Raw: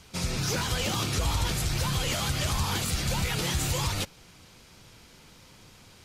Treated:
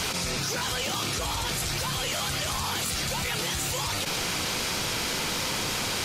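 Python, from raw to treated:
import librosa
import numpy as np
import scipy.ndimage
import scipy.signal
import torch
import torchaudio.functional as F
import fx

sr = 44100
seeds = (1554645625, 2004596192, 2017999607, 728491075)

y = fx.low_shelf(x, sr, hz=200.0, db=-12.0)
y = fx.env_flatten(y, sr, amount_pct=100)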